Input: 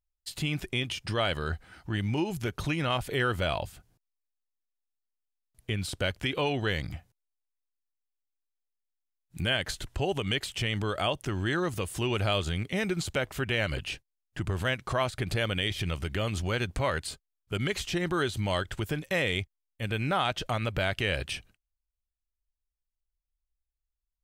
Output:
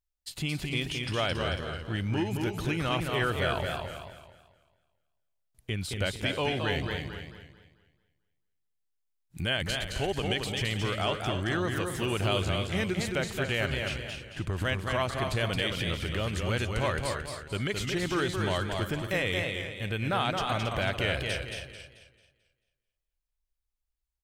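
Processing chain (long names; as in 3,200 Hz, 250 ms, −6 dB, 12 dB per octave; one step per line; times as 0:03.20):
single-tap delay 275 ms −10.5 dB
feedback echo with a swinging delay time 220 ms, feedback 36%, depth 97 cents, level −4.5 dB
level −1.5 dB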